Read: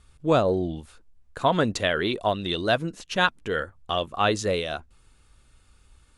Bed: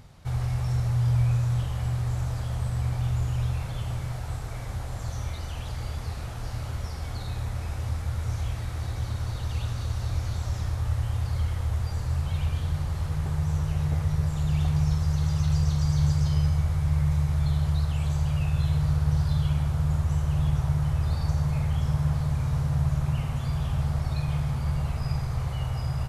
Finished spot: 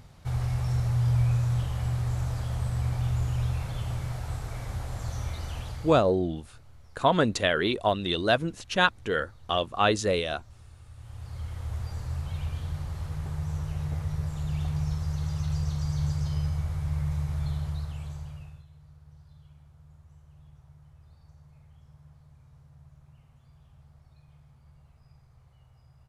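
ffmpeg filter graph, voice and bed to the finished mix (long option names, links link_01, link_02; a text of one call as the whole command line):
ffmpeg -i stem1.wav -i stem2.wav -filter_complex "[0:a]adelay=5600,volume=-0.5dB[link_01];[1:a]volume=16dB,afade=type=out:start_time=5.56:duration=0.57:silence=0.0841395,afade=type=in:start_time=10.93:duration=0.87:silence=0.141254,afade=type=out:start_time=17.45:duration=1.2:silence=0.0668344[link_02];[link_01][link_02]amix=inputs=2:normalize=0" out.wav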